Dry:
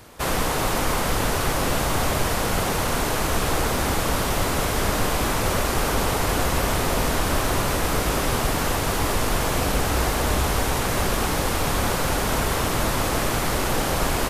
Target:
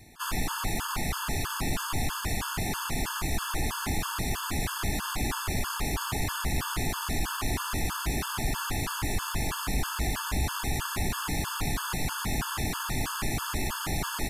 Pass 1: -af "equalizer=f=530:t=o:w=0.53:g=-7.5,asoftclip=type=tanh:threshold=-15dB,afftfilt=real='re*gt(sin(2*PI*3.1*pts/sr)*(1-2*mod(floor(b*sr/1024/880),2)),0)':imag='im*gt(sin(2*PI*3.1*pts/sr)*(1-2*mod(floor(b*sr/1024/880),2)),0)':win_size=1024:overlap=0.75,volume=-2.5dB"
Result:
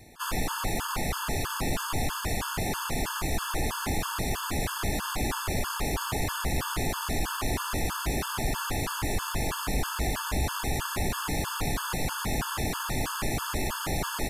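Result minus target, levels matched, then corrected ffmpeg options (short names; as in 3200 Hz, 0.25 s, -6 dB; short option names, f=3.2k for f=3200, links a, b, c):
500 Hz band +4.0 dB
-af "equalizer=f=530:t=o:w=0.53:g=-17,asoftclip=type=tanh:threshold=-15dB,afftfilt=real='re*gt(sin(2*PI*3.1*pts/sr)*(1-2*mod(floor(b*sr/1024/880),2)),0)':imag='im*gt(sin(2*PI*3.1*pts/sr)*(1-2*mod(floor(b*sr/1024/880),2)),0)':win_size=1024:overlap=0.75,volume=-2.5dB"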